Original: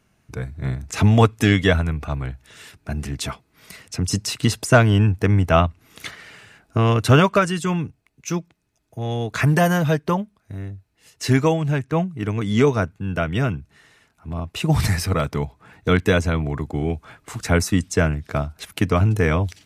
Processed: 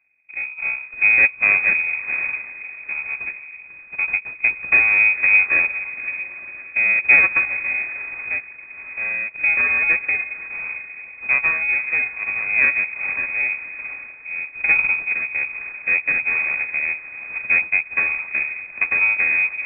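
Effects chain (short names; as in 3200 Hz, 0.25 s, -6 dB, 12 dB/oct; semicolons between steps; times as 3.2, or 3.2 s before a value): FFT order left unsorted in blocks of 32 samples; on a send: diffused feedback echo 0.491 s, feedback 50%, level -12 dB; on the sum: rotary speaker horn 1.2 Hz; full-wave rectifier; inverted band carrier 2500 Hz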